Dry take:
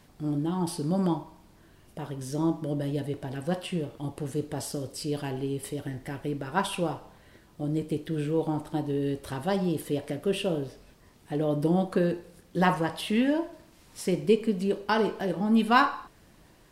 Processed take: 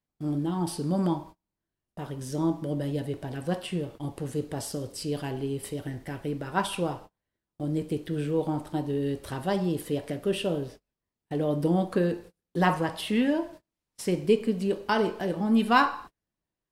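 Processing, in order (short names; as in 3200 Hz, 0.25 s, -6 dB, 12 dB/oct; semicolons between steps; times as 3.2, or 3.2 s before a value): gate -43 dBFS, range -32 dB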